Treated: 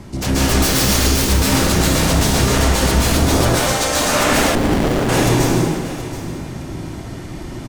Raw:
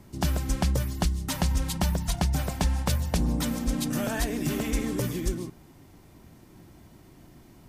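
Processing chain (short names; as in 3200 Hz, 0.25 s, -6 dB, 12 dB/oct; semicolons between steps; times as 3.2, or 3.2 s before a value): LPF 8400 Hz 12 dB/oct; 0.48–1.07 bell 5200 Hz +12.5 dB 1.9 oct; 3.45–4.01 HPF 520 Hz 24 dB/oct; sine folder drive 16 dB, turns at -14 dBFS; feedback echo 0.727 s, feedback 18%, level -14 dB; plate-style reverb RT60 1.3 s, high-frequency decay 0.85×, pre-delay 0.12 s, DRR -7 dB; 4.55–5.09 running maximum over 33 samples; gain -5 dB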